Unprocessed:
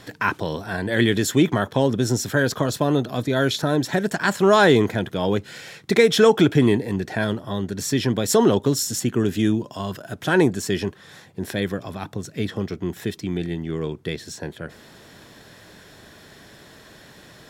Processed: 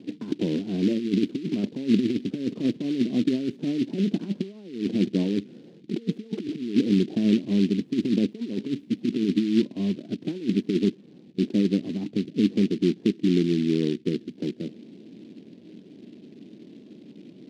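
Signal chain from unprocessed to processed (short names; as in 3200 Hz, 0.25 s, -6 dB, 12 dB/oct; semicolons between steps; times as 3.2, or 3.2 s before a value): negative-ratio compressor -23 dBFS, ratio -0.5; Butterworth band-pass 260 Hz, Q 1.7; noise-modulated delay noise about 3000 Hz, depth 0.053 ms; gain +5.5 dB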